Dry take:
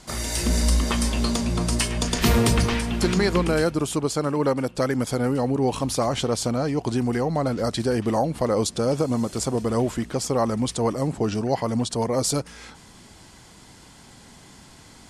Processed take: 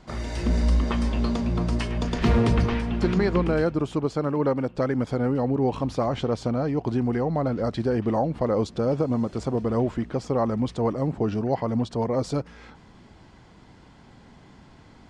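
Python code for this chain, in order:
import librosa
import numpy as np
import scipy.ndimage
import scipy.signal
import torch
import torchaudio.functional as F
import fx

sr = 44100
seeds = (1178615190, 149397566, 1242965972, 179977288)

y = fx.spacing_loss(x, sr, db_at_10k=26)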